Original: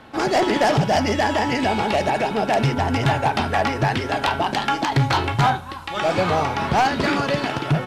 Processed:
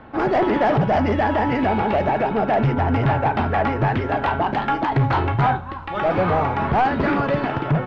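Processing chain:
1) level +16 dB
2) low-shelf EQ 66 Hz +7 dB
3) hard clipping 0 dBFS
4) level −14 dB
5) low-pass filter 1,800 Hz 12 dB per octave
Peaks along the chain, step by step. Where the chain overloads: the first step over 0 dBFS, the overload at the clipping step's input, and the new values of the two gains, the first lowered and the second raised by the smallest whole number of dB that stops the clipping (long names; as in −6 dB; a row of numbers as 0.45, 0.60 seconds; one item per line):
+4.0, +7.0, 0.0, −14.0, −13.0 dBFS
step 1, 7.0 dB
step 1 +9 dB, step 4 −7 dB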